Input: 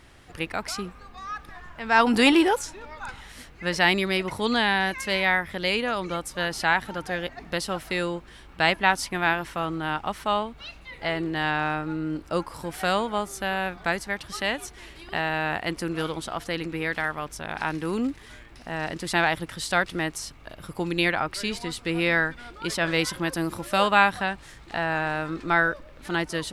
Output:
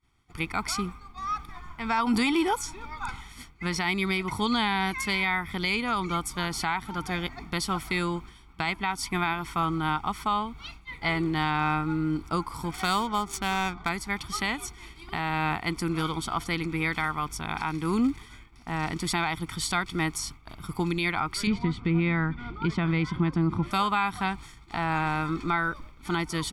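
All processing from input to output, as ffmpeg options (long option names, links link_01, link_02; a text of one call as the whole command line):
ffmpeg -i in.wav -filter_complex "[0:a]asettb=1/sr,asplit=3[link_01][link_02][link_03];[link_01]atrim=end=12.714[link_04];[link_02]atrim=start=12.71:end=13.89,asetpts=PTS-STARTPTS,afade=type=in:duration=0.004:curve=qsin,afade=type=out:start_time=1.176:duration=0.004:curve=qsin,bass=frequency=250:gain=-1,treble=frequency=4000:gain=8,adynamicsmooth=sensitivity=8:basefreq=1700[link_05];[link_03]atrim=start=13.886[link_06];[link_04][link_05]acrossfade=duration=0.004:curve1=hsin:curve2=qsin[link_07];[link_07][link_06]acrossfade=duration=0.004:curve1=qsin:curve2=hsin,asettb=1/sr,asplit=3[link_08][link_09][link_10];[link_08]atrim=end=21.474[link_11];[link_09]atrim=start=21.47:end=23.71,asetpts=PTS-STARTPTS,afade=type=in:duration=0.004:curve=qsin,afade=type=out:start_time=2.236:duration=0.004:curve=qsin,lowpass=2800,equalizer=frequency=150:width=0.55:gain=10[link_12];[link_10]atrim=start=23.706[link_13];[link_11][link_12]acrossfade=duration=0.004:curve1=hsin:curve2=qsin[link_14];[link_14][link_13]acrossfade=duration=0.004:curve1=qsin:curve2=hsin,agate=range=-33dB:threshold=-39dB:ratio=3:detection=peak,aecho=1:1:0.9:0.8,alimiter=limit=-16dB:level=0:latency=1:release=275" out.wav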